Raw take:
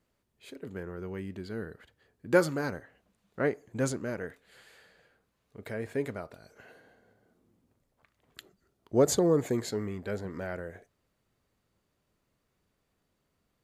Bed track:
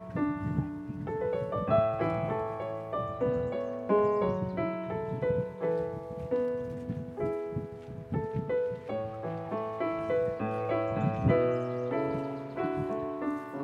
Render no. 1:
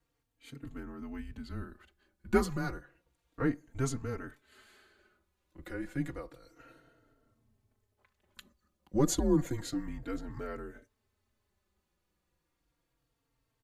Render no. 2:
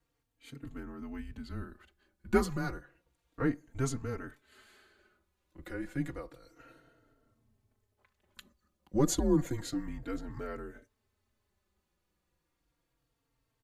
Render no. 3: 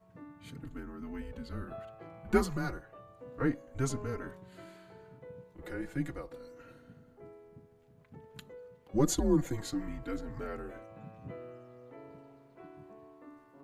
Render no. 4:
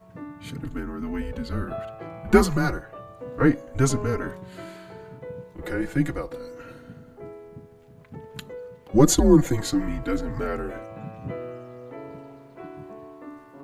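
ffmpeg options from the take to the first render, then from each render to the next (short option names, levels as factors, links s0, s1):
-filter_complex "[0:a]afreqshift=-130,asplit=2[s0][s1];[s1]adelay=3.8,afreqshift=-0.31[s2];[s0][s2]amix=inputs=2:normalize=1"
-af anull
-filter_complex "[1:a]volume=0.1[s0];[0:a][s0]amix=inputs=2:normalize=0"
-af "volume=3.76,alimiter=limit=0.708:level=0:latency=1"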